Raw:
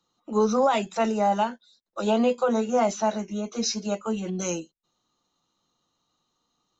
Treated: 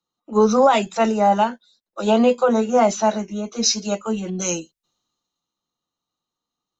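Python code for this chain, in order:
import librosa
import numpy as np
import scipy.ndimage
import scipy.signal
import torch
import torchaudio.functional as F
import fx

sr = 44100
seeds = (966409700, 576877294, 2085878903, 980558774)

y = fx.band_widen(x, sr, depth_pct=40)
y = y * 10.0 ** (6.0 / 20.0)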